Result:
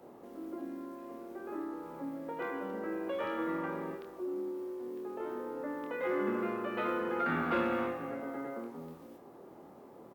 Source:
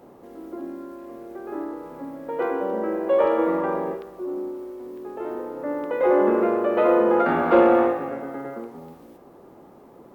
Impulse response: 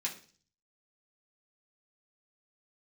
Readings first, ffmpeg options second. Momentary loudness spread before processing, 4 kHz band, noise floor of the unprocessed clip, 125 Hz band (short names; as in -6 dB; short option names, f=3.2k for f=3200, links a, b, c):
19 LU, n/a, -49 dBFS, -6.5 dB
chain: -filter_complex "[0:a]highpass=f=100:p=1,acrossover=split=250|1300[a][b][c];[b]acompressor=threshold=-35dB:ratio=6[d];[a][d][c]amix=inputs=3:normalize=0,asplit=2[e][f];[f]adelay=25,volume=-6dB[g];[e][g]amix=inputs=2:normalize=0,volume=-5.5dB"